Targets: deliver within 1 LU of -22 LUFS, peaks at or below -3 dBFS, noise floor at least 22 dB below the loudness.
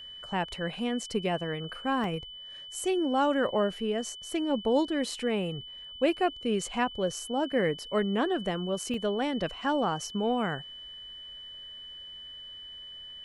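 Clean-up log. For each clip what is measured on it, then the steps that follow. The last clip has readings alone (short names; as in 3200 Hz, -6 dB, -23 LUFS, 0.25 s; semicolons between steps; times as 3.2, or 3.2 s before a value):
dropouts 2; longest dropout 2.0 ms; steady tone 3000 Hz; tone level -42 dBFS; loudness -30.0 LUFS; peak -13.0 dBFS; loudness target -22.0 LUFS
-> interpolate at 2.04/8.94, 2 ms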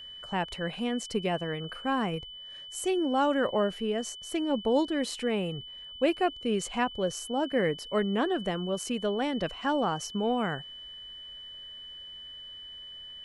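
dropouts 0; steady tone 3000 Hz; tone level -42 dBFS
-> notch 3000 Hz, Q 30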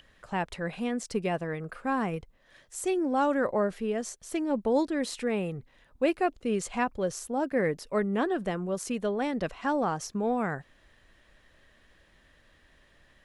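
steady tone none; loudness -30.0 LUFS; peak -13.5 dBFS; loudness target -22.0 LUFS
-> gain +8 dB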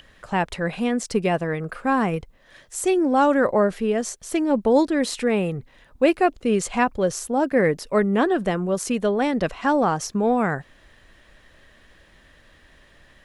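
loudness -22.0 LUFS; peak -5.5 dBFS; noise floor -55 dBFS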